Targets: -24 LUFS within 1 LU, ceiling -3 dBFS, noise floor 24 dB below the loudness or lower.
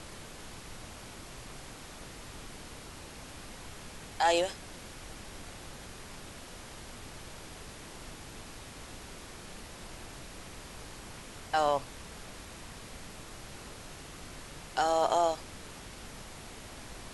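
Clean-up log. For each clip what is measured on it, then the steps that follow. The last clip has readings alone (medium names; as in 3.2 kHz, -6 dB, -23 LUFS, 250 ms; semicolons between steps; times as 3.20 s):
noise floor -48 dBFS; noise floor target -62 dBFS; loudness -38.0 LUFS; peak level -14.5 dBFS; loudness target -24.0 LUFS
-> noise print and reduce 14 dB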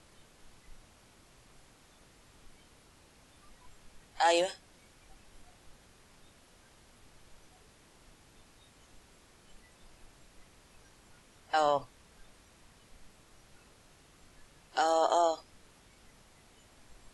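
noise floor -62 dBFS; loudness -30.0 LUFS; peak level -14.5 dBFS; loudness target -24.0 LUFS
-> trim +6 dB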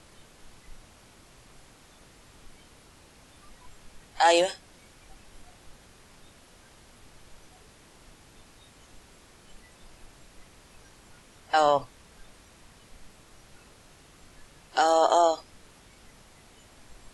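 loudness -24.0 LUFS; peak level -8.5 dBFS; noise floor -56 dBFS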